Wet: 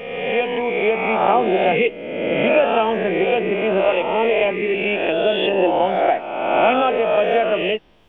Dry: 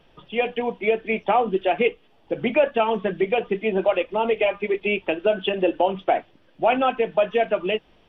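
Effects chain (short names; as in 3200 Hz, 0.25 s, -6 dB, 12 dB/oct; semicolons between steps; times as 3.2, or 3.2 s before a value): spectral swells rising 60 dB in 1.42 s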